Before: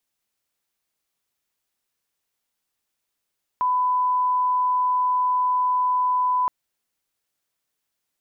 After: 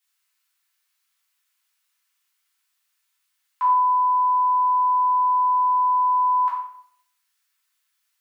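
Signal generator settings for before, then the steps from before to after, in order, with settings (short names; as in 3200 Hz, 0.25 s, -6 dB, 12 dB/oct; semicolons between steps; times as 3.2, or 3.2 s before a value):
line-up tone -18 dBFS 2.87 s
HPF 1100 Hz 24 dB/oct; shoebox room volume 140 m³, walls mixed, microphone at 2.1 m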